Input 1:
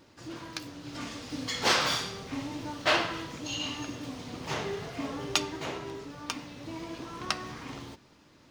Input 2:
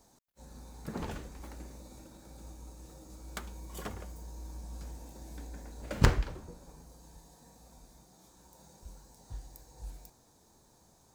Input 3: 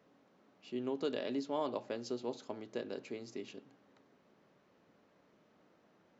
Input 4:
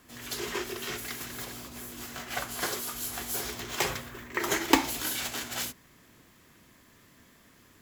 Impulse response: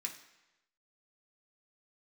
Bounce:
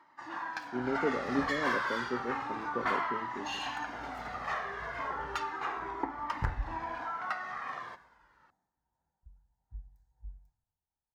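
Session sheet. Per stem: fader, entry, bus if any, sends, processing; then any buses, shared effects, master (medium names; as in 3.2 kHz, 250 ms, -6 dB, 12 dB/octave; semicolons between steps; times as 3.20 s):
-8.0 dB, 0.00 s, bus A, no send, upward compressor, threshold -52 dBFS; overdrive pedal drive 23 dB, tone 4.6 kHz, clips at -8.5 dBFS; Shepard-style flanger falling 0.32 Hz
-7.5 dB, 0.40 s, bus A, no send, band-stop 1.1 kHz, Q 7.5
+2.0 dB, 0.00 s, no bus, no send, elliptic low-pass 550 Hz; peaking EQ 140 Hz +6.5 dB 0.93 oct
-8.5 dB, 1.30 s, bus A, no send, boxcar filter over 33 samples
bus A: 0.0 dB, high-order bell 1.2 kHz +13 dB; compression 4:1, threshold -32 dBFS, peak gain reduction 14 dB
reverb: none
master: treble shelf 3 kHz -9.5 dB; three bands expanded up and down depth 100%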